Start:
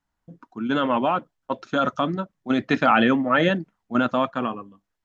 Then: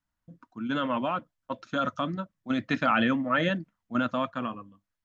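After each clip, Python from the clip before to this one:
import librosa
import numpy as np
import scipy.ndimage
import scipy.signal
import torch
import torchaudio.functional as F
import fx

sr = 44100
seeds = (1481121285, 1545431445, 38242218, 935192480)

y = fx.graphic_eq_31(x, sr, hz=(100, 400, 800), db=(5, -11, -7))
y = y * librosa.db_to_amplitude(-5.0)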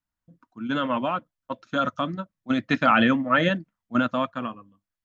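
y = fx.upward_expand(x, sr, threshold_db=-42.0, expansion=1.5)
y = y * librosa.db_to_amplitude(6.0)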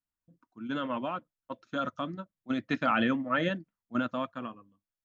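y = fx.peak_eq(x, sr, hz=370.0, db=4.0, octaves=0.72)
y = y * librosa.db_to_amplitude(-8.5)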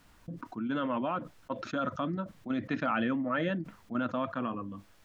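y = fx.lowpass(x, sr, hz=2300.0, slope=6)
y = fx.env_flatten(y, sr, amount_pct=70)
y = y * librosa.db_to_amplitude(-3.5)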